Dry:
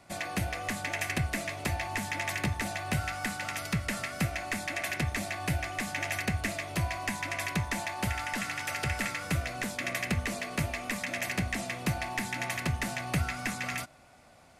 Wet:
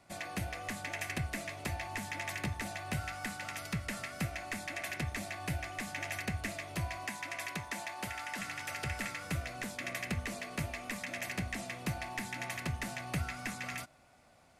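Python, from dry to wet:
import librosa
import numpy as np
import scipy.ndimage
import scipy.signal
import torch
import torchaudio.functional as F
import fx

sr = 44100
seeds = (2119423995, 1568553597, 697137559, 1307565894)

y = fx.highpass(x, sr, hz=280.0, slope=6, at=(7.06, 8.39))
y = F.gain(torch.from_numpy(y), -6.0).numpy()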